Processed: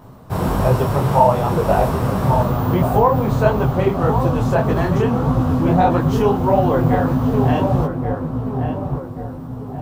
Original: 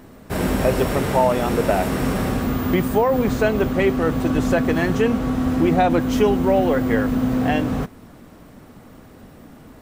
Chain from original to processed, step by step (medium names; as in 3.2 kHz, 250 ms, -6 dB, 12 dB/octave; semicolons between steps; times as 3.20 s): graphic EQ 125/250/1000/2000/8000 Hz +12/-5/+9/-8/-4 dB; on a send: filtered feedback delay 1131 ms, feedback 45%, low-pass 1.4 kHz, level -5.5 dB; on the sum: detune thickener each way 58 cents; trim +3 dB